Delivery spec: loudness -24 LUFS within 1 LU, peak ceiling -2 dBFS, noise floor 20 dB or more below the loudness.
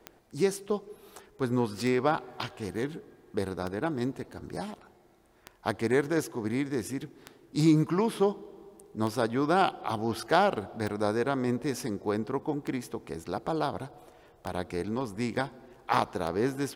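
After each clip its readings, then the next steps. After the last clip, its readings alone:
clicks found 10; loudness -30.5 LUFS; peak level -9.5 dBFS; loudness target -24.0 LUFS
-> de-click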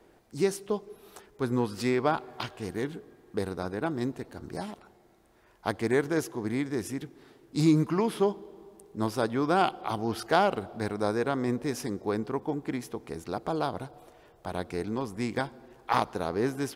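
clicks found 0; loudness -30.5 LUFS; peak level -9.5 dBFS; loudness target -24.0 LUFS
-> trim +6.5 dB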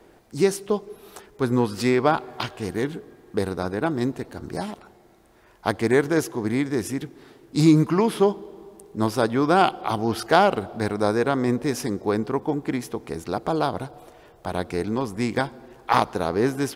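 loudness -24.0 LUFS; peak level -3.0 dBFS; noise floor -54 dBFS

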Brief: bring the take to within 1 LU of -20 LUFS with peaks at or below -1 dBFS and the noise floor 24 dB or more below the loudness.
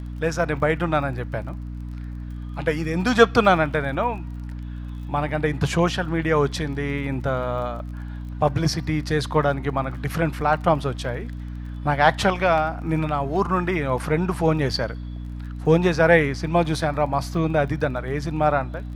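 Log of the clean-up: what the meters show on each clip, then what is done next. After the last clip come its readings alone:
tick rate 23 per s; hum 60 Hz; highest harmonic 300 Hz; hum level -30 dBFS; loudness -22.5 LUFS; peak level -1.0 dBFS; loudness target -20.0 LUFS
-> de-click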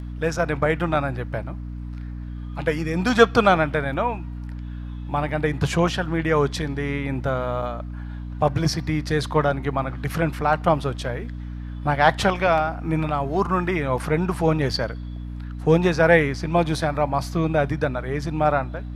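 tick rate 0.11 per s; hum 60 Hz; highest harmonic 300 Hz; hum level -30 dBFS
-> hum notches 60/120/180/240/300 Hz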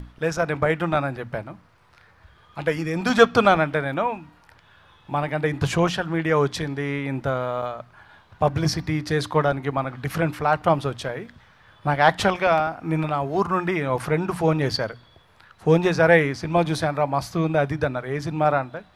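hum not found; loudness -23.0 LUFS; peak level -1.5 dBFS; loudness target -20.0 LUFS
-> trim +3 dB; peak limiter -1 dBFS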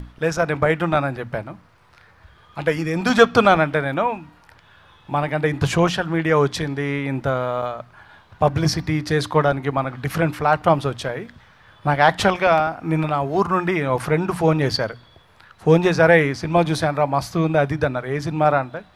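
loudness -20.0 LUFS; peak level -1.0 dBFS; noise floor -52 dBFS

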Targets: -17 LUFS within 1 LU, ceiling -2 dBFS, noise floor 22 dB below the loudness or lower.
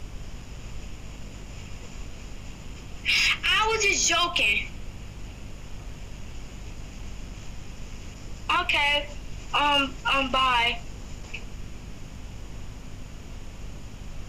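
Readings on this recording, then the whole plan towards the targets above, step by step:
hum 50 Hz; highest harmonic 250 Hz; hum level -41 dBFS; noise floor -42 dBFS; noise floor target -45 dBFS; loudness -22.5 LUFS; peak level -13.5 dBFS; loudness target -17.0 LUFS
-> de-hum 50 Hz, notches 5; noise print and reduce 6 dB; trim +5.5 dB

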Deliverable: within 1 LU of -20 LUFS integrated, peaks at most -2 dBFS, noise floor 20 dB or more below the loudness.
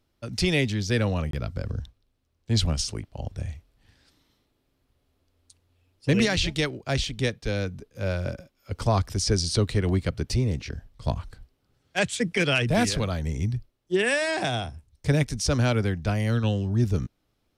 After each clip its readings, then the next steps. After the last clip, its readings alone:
dropouts 1; longest dropout 23 ms; loudness -26.5 LUFS; peak level -11.0 dBFS; loudness target -20.0 LUFS
-> interpolate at 1.31 s, 23 ms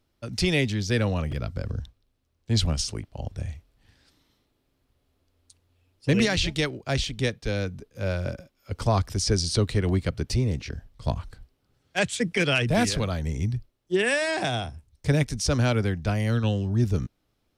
dropouts 0; loudness -26.5 LUFS; peak level -11.0 dBFS; loudness target -20.0 LUFS
-> trim +6.5 dB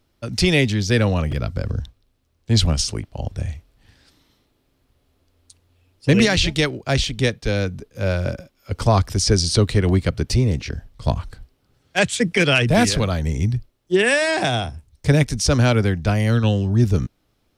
loudness -20.0 LUFS; peak level -4.5 dBFS; noise floor -67 dBFS

